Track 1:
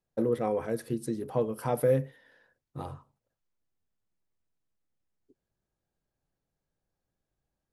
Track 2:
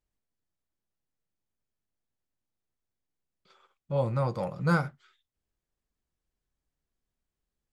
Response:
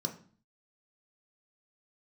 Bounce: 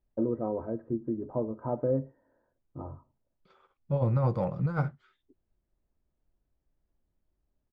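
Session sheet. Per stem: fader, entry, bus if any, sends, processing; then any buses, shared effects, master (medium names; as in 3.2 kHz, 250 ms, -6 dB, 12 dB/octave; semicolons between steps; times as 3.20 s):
-3.5 dB, 0.00 s, no send, low-pass 1.2 kHz 24 dB/octave; comb 3.2 ms, depth 46%
-1.0 dB, 0.00 s, no send, compressor with a negative ratio -27 dBFS, ratio -0.5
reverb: none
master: low-pass 2.2 kHz 6 dB/octave; tilt EQ -1.5 dB/octave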